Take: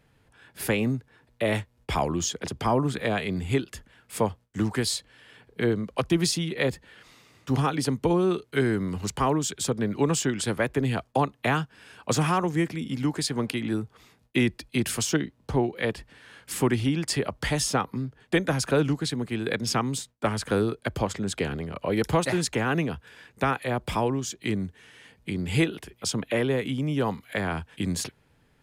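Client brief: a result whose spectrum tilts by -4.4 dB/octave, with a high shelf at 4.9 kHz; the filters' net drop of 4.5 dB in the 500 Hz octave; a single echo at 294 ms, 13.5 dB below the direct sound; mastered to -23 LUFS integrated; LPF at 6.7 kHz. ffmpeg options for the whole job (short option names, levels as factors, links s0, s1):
-af "lowpass=6700,equalizer=f=500:t=o:g=-6,highshelf=f=4900:g=6,aecho=1:1:294:0.211,volume=1.78"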